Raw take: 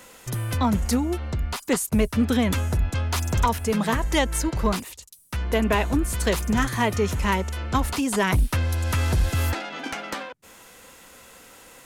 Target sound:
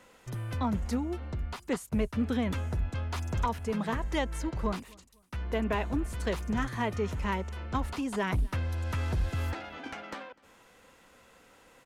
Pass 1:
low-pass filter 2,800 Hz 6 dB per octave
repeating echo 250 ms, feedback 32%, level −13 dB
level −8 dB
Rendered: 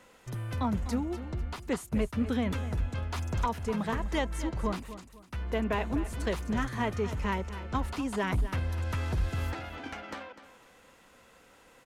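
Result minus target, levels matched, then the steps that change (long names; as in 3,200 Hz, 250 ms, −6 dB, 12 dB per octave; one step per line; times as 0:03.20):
echo-to-direct +12 dB
change: repeating echo 250 ms, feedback 32%, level −25 dB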